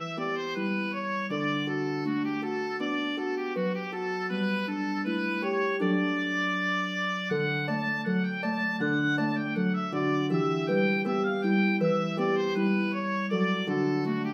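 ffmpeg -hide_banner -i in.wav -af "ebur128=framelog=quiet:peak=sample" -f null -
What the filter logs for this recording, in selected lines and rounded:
Integrated loudness:
  I:         -28.2 LUFS
  Threshold: -38.2 LUFS
Loudness range:
  LRA:         3.5 LU
  Threshold: -48.1 LUFS
  LRA low:   -30.2 LUFS
  LRA high:  -26.6 LUFS
Sample peak:
  Peak:      -14.2 dBFS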